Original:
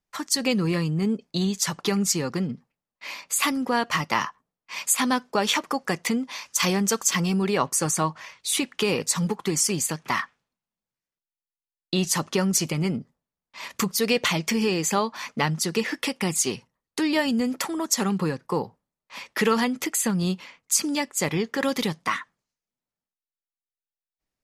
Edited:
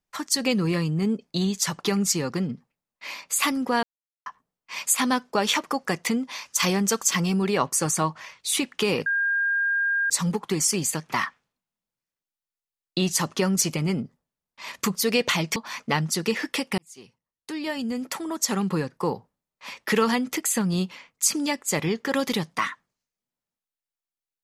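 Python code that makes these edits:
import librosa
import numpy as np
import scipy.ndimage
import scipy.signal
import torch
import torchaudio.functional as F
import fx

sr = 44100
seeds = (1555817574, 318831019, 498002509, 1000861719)

y = fx.edit(x, sr, fx.silence(start_s=3.83, length_s=0.43),
    fx.insert_tone(at_s=9.06, length_s=1.04, hz=1610.0, db=-20.5),
    fx.cut(start_s=14.52, length_s=0.53),
    fx.fade_in_span(start_s=16.27, length_s=1.99), tone=tone)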